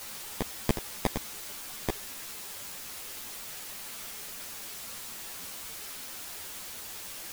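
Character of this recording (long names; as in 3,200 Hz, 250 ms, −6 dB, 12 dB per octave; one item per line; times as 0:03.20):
aliases and images of a low sample rate 1,400 Hz, jitter 0%
tremolo saw up 1.4 Hz, depth 90%
a quantiser's noise floor 8 bits, dither triangular
a shimmering, thickened sound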